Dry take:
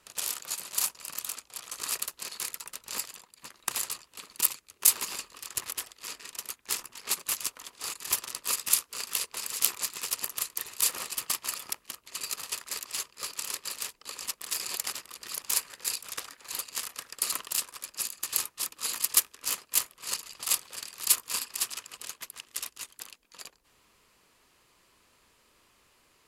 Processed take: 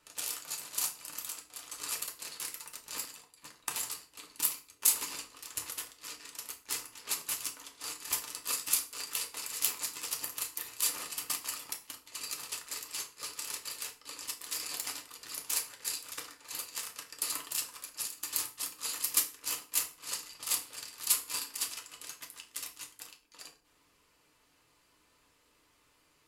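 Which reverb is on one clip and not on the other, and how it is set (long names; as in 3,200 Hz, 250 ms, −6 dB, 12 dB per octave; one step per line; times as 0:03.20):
feedback delay network reverb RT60 0.38 s, low-frequency decay 1.2×, high-frequency decay 0.85×, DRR 2 dB
level −6 dB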